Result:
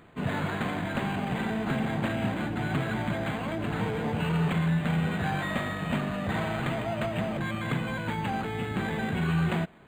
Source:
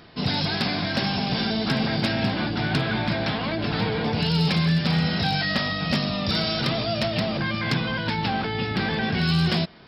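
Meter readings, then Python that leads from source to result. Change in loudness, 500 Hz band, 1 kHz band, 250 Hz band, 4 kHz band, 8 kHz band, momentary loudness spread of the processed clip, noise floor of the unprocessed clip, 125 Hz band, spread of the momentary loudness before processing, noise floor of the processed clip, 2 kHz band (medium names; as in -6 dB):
-6.0 dB, -4.0 dB, -4.0 dB, -4.5 dB, -15.5 dB, no reading, 5 LU, -28 dBFS, -4.5 dB, 4 LU, -34 dBFS, -5.5 dB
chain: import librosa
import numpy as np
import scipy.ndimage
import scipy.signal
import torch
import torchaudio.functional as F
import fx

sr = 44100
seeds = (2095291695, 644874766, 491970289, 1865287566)

y = np.interp(np.arange(len(x)), np.arange(len(x))[::8], x[::8])
y = y * 10.0 ** (-4.5 / 20.0)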